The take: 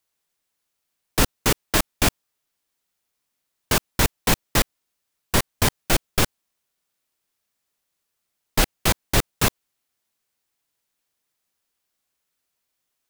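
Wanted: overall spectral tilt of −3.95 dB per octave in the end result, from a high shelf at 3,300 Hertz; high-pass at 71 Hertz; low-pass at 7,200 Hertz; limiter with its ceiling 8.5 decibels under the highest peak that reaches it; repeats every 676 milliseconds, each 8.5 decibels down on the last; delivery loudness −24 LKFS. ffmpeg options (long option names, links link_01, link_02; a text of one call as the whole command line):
ffmpeg -i in.wav -af "highpass=71,lowpass=7200,highshelf=frequency=3300:gain=-4.5,alimiter=limit=-15.5dB:level=0:latency=1,aecho=1:1:676|1352|2028|2704:0.376|0.143|0.0543|0.0206,volume=7.5dB" out.wav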